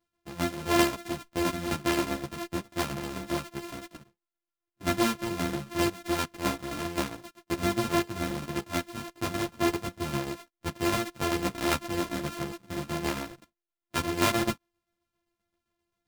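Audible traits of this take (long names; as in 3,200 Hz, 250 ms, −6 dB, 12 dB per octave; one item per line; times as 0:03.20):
a buzz of ramps at a fixed pitch in blocks of 128 samples
tremolo saw down 7.6 Hz, depth 55%
a shimmering, thickened sound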